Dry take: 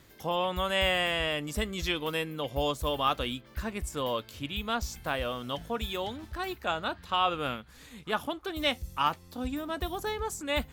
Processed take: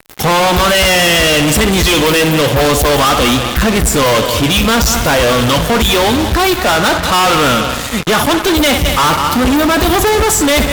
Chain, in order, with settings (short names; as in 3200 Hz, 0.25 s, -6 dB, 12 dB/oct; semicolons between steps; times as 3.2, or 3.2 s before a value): bin magnitudes rounded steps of 15 dB; multi-head echo 64 ms, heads first and third, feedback 54%, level -18 dB; fuzz box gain 46 dB, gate -50 dBFS; gain +4 dB